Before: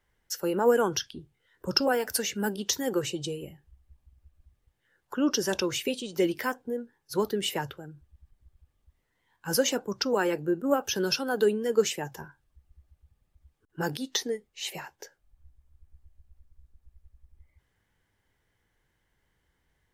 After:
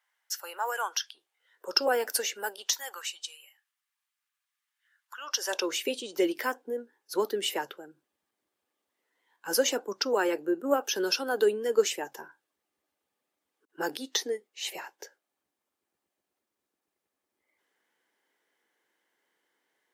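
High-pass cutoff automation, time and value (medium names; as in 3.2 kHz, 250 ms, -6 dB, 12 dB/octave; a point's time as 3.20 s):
high-pass 24 dB/octave
1.18 s 790 Hz
2.02 s 290 Hz
3.16 s 1.2 kHz
5.14 s 1.2 kHz
5.74 s 290 Hz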